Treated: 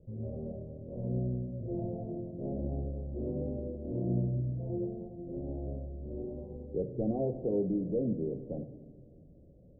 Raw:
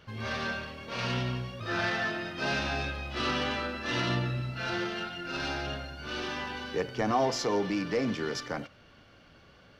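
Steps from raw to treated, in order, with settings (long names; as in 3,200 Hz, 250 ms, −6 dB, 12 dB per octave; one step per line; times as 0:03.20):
Butterworth low-pass 600 Hz 48 dB per octave
low-shelf EQ 100 Hz +8 dB
on a send: convolution reverb RT60 1.8 s, pre-delay 6 ms, DRR 10.5 dB
on the sum: level −2 dB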